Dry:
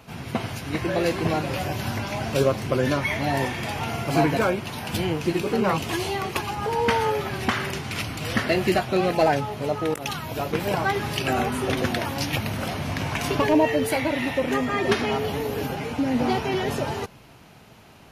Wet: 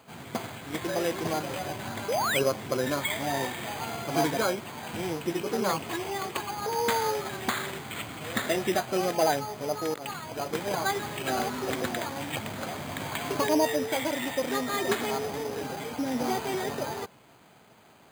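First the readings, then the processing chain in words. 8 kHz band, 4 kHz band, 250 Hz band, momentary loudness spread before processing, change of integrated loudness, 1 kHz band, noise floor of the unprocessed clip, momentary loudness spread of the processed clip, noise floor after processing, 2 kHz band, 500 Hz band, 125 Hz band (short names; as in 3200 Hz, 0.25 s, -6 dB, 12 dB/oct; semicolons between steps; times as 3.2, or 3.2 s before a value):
+1.0 dB, -3.5 dB, -7.0 dB, 7 LU, -5.0 dB, -4.0 dB, -49 dBFS, 9 LU, -56 dBFS, -5.5 dB, -5.0 dB, -11.0 dB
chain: HPF 290 Hz 6 dB/oct; painted sound rise, 2.08–2.52, 410–5700 Hz -24 dBFS; careless resampling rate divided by 8×, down filtered, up hold; gain -3.5 dB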